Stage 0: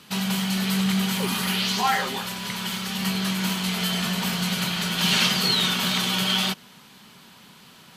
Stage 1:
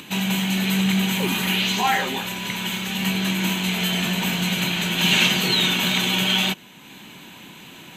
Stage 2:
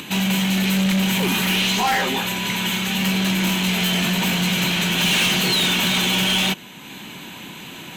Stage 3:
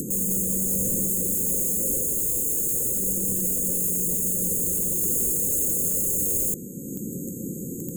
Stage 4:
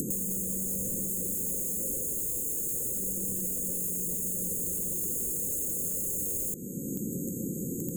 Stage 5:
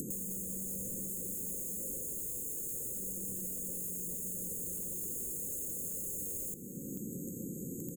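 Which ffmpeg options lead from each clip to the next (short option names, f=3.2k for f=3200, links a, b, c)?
-af "acompressor=mode=upward:threshold=-38dB:ratio=2.5,superequalizer=6b=2.24:10b=0.562:12b=1.58:14b=0.316:16b=0.501,volume=2.5dB"
-af "asoftclip=type=tanh:threshold=-21.5dB,volume=6dB"
-af "aeval=exprs='(mod(18.8*val(0)+1,2)-1)/18.8':c=same,afftfilt=real='re*(1-between(b*sr/4096,550,6400))':imag='im*(1-between(b*sr/4096,550,6400))':win_size=4096:overlap=0.75,volume=7.5dB"
-af "acompressor=threshold=-29dB:ratio=6"
-af "aecho=1:1:450|900|1350:0.15|0.0569|0.0216,volume=-7.5dB"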